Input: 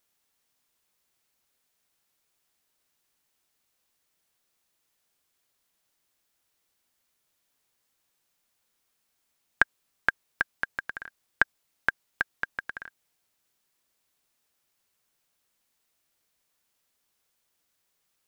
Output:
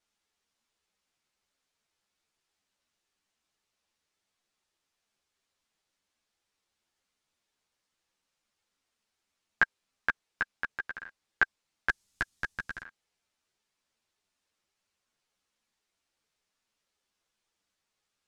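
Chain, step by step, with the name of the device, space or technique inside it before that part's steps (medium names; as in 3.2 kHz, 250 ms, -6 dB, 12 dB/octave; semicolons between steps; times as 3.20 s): string-machine ensemble chorus (three-phase chorus; low-pass 7 kHz 12 dB/octave); 11.89–12.83 s: tone controls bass +12 dB, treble +14 dB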